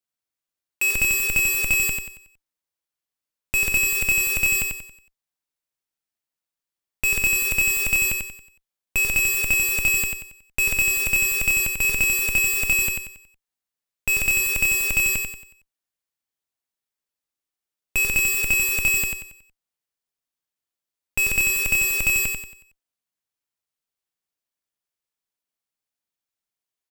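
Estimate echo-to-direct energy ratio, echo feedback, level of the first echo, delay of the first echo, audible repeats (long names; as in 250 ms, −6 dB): −4.5 dB, 37%, −5.0 dB, 92 ms, 4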